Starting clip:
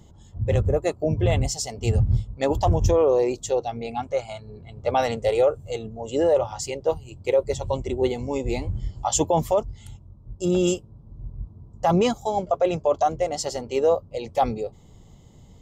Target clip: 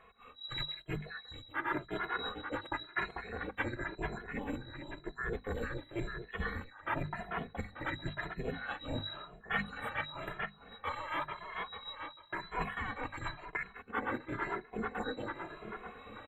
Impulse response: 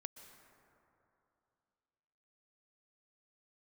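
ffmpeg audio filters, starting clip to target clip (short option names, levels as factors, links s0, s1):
-filter_complex "[0:a]afftfilt=real='real(if(lt(b,736),b+184*(1-2*mod(floor(b/184),2)),b),0)':imag='imag(if(lt(b,736),b+184*(1-2*mod(floor(b/184),2)),b),0)':win_size=2048:overlap=0.75,asetrate=42336,aresample=44100,asuperstop=centerf=5300:order=20:qfactor=1.4,highshelf=f=8300:g=-11,bandreject=f=50:t=h:w=6,bandreject=f=100:t=h:w=6,bandreject=f=150:t=h:w=6,bandreject=f=200:t=h:w=6,bandreject=f=250:t=h:w=6,asplit=2[s0][s1];[s1]adelay=444,lowpass=f=4600:p=1,volume=0.188,asplit=2[s2][s3];[s3]adelay=444,lowpass=f=4600:p=1,volume=0.5,asplit=2[s4][s5];[s5]adelay=444,lowpass=f=4600:p=1,volume=0.5,asplit=2[s6][s7];[s7]adelay=444,lowpass=f=4600:p=1,volume=0.5,asplit=2[s8][s9];[s9]adelay=444,lowpass=f=4600:p=1,volume=0.5[s10];[s0][s2][s4][s6][s8][s10]amix=inputs=6:normalize=0,dynaudnorm=f=210:g=5:m=2.37,firequalizer=gain_entry='entry(1800,0);entry(2900,-23);entry(5700,-26)':delay=0.05:min_phase=1,areverse,acompressor=threshold=0.00355:ratio=8,areverse,asplit=2[s11][s12];[s12]adelay=2.4,afreqshift=0.95[s13];[s11][s13]amix=inputs=2:normalize=1,volume=7.94"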